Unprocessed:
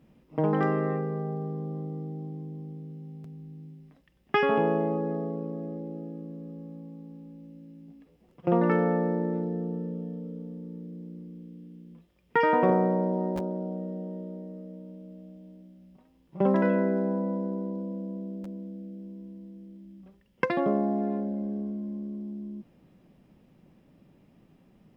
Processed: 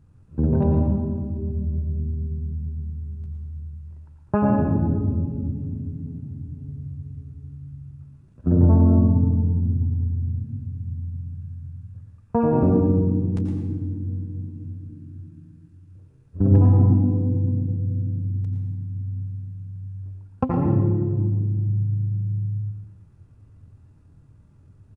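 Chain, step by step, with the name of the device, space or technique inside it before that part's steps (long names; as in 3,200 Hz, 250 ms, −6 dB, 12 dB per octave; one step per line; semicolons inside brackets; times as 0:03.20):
monster voice (pitch shifter −12 semitones; low-shelf EQ 250 Hz +7 dB; single-tap delay 114 ms −10 dB; convolution reverb RT60 1.2 s, pre-delay 82 ms, DRR 2.5 dB)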